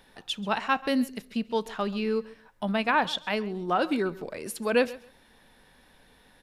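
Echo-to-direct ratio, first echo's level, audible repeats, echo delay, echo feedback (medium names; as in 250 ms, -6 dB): -19.5 dB, -19.5 dB, 2, 135 ms, 20%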